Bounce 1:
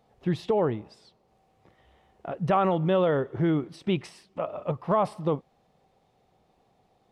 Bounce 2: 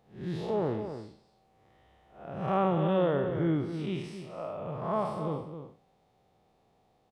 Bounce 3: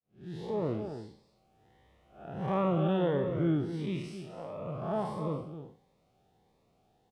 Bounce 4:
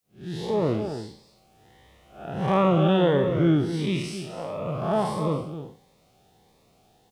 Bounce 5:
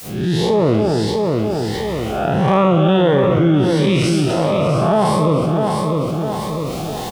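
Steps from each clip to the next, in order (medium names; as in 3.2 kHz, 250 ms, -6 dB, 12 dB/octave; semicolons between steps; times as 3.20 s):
spectral blur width 179 ms; echo from a far wall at 45 m, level -9 dB; trim -1 dB
fade-in on the opening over 0.70 s; Shepard-style phaser rising 1.5 Hz
treble shelf 2.7 kHz +9 dB; trim +8 dB
on a send: feedback delay 652 ms, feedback 20%, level -11 dB; on the sum: level flattener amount 70%; trim +5 dB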